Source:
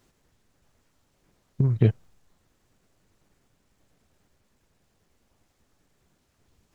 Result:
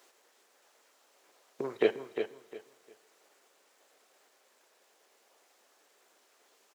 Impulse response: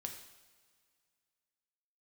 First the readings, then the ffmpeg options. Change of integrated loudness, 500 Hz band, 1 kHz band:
−10.0 dB, +4.0 dB, can't be measured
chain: -filter_complex "[0:a]highpass=frequency=420:width=0.5412,highpass=frequency=420:width=1.3066,aecho=1:1:353|706|1059:0.398|0.0955|0.0229,asplit=2[link_01][link_02];[1:a]atrim=start_sample=2205,asetrate=43218,aresample=44100[link_03];[link_02][link_03]afir=irnorm=-1:irlink=0,volume=-6.5dB[link_04];[link_01][link_04]amix=inputs=2:normalize=0,volume=3.5dB"

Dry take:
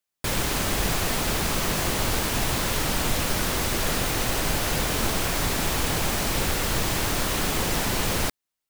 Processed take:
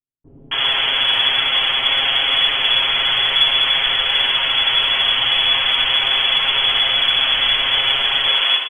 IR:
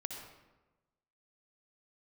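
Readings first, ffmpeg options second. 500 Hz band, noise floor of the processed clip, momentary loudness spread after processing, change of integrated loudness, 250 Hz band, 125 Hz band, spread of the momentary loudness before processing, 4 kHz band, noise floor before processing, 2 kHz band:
−3.0 dB, −43 dBFS, 1 LU, +10.5 dB, below −10 dB, −13.0 dB, 0 LU, +18.0 dB, −85 dBFS, +10.5 dB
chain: -filter_complex "[0:a]lowpass=frequency=2900:width_type=q:width=0.5098,lowpass=frequency=2900:width_type=q:width=0.6013,lowpass=frequency=2900:width_type=q:width=0.9,lowpass=frequency=2900:width_type=q:width=2.563,afreqshift=-3400,asubboost=boost=3:cutoff=89,acontrast=77,aecho=1:1:7.4:0.78,acrossover=split=310[link_01][link_02];[link_02]adelay=270[link_03];[link_01][link_03]amix=inputs=2:normalize=0[link_04];[1:a]atrim=start_sample=2205,atrim=end_sample=6174[link_05];[link_04][link_05]afir=irnorm=-1:irlink=0,volume=1dB"

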